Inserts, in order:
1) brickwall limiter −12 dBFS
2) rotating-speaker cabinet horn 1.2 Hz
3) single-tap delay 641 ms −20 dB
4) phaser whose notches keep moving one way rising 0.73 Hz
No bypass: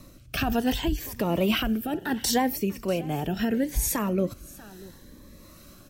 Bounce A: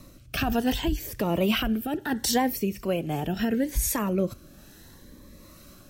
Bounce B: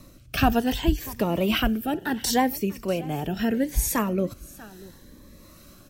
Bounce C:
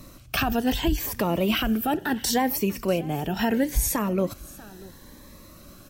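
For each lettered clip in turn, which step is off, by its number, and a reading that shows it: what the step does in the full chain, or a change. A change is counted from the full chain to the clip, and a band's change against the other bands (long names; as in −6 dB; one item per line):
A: 3, change in momentary loudness spread −7 LU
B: 1, change in crest factor +4.0 dB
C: 2, change in momentary loudness spread −3 LU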